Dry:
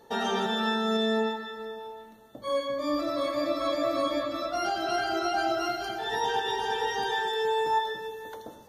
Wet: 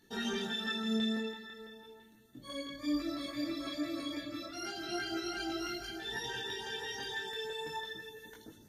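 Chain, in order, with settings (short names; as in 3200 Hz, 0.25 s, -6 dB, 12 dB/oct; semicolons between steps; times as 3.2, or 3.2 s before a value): band shelf 750 Hz -13 dB; LFO notch saw up 6 Hz 440–4300 Hz; detuned doubles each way 12 cents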